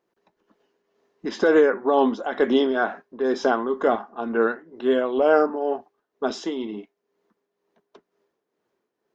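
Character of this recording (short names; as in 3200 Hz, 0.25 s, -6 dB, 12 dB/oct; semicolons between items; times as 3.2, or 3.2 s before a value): tremolo triangle 2.1 Hz, depth 65%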